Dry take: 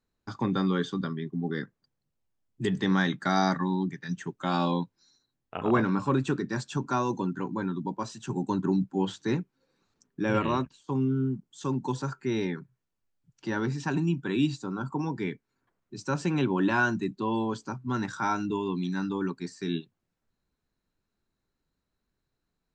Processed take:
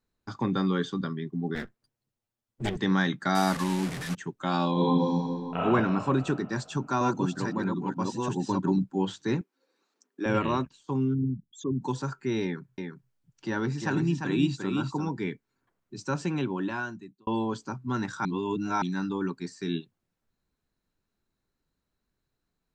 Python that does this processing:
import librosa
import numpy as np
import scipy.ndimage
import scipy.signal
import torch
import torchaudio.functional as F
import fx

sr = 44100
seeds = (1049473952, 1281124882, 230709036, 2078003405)

y = fx.lower_of_two(x, sr, delay_ms=8.6, at=(1.55, 2.77))
y = fx.delta_mod(y, sr, bps=64000, step_db=-29.5, at=(3.35, 4.15))
y = fx.reverb_throw(y, sr, start_s=4.72, length_s=0.86, rt60_s=2.7, drr_db=-9.5)
y = fx.reverse_delay(y, sr, ms=639, wet_db=-2.0, at=(6.37, 8.79))
y = fx.highpass(y, sr, hz=280.0, slope=24, at=(9.41, 10.26))
y = fx.envelope_sharpen(y, sr, power=3.0, at=(11.13, 11.8), fade=0.02)
y = fx.echo_single(y, sr, ms=348, db=-5.0, at=(12.43, 15.09))
y = fx.edit(y, sr, fx.fade_out_span(start_s=16.04, length_s=1.23),
    fx.reverse_span(start_s=18.25, length_s=0.57), tone=tone)